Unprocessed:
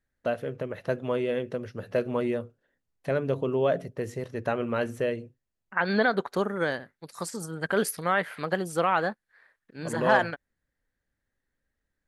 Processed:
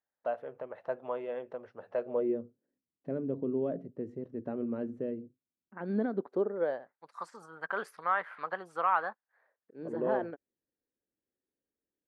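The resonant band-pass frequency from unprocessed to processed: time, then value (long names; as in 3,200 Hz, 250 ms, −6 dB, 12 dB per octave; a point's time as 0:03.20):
resonant band-pass, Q 2.2
0:01.97 830 Hz
0:02.43 270 Hz
0:06.15 270 Hz
0:07.13 1,100 Hz
0:09.08 1,100 Hz
0:09.86 370 Hz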